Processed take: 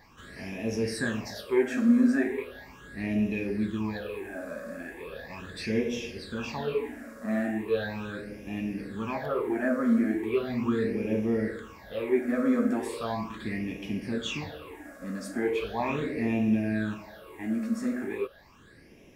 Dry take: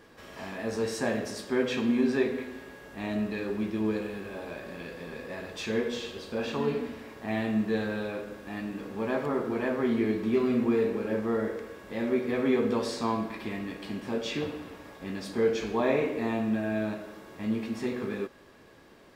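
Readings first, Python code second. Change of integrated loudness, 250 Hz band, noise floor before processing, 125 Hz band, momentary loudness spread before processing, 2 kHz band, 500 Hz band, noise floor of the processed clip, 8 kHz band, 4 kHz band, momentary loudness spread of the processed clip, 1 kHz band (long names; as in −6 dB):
+1.0 dB, +2.0 dB, −54 dBFS, +1.5 dB, 13 LU, +1.0 dB, −1.5 dB, −54 dBFS, −0.5 dB, −1.0 dB, 14 LU, −1.0 dB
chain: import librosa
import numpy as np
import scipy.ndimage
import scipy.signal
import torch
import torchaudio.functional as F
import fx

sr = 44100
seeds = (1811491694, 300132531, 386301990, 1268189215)

y = fx.phaser_stages(x, sr, stages=8, low_hz=110.0, high_hz=1300.0, hz=0.38, feedback_pct=45)
y = y * librosa.db_to_amplitude(3.0)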